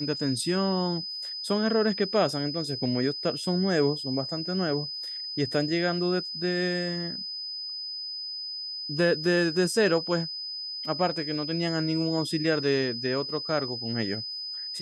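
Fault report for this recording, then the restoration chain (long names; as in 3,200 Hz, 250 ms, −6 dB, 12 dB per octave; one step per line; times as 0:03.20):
whistle 5,000 Hz −33 dBFS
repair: notch filter 5,000 Hz, Q 30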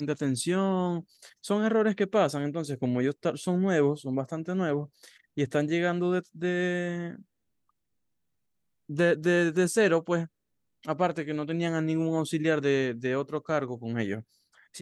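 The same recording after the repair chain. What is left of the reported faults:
none of them is left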